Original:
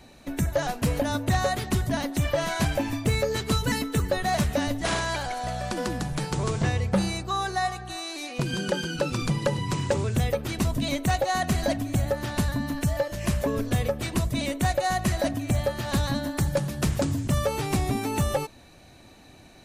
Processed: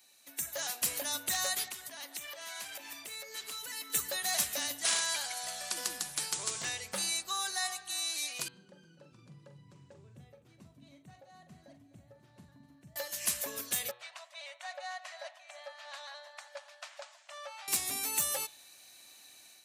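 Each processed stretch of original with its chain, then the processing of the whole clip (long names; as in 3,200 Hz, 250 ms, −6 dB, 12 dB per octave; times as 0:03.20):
0:01.68–0:03.90: bass and treble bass −9 dB, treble −6 dB + downward compressor 10 to 1, threshold −32 dBFS
0:08.48–0:12.96: resonant band-pass 130 Hz, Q 1.6 + multi-tap delay 43/253 ms −9/−14.5 dB
0:13.91–0:17.68: linear-phase brick-wall high-pass 550 Hz + head-to-tape spacing loss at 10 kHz 33 dB
whole clip: first difference; hum removal 122.3 Hz, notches 35; automatic gain control gain up to 7.5 dB; level −1.5 dB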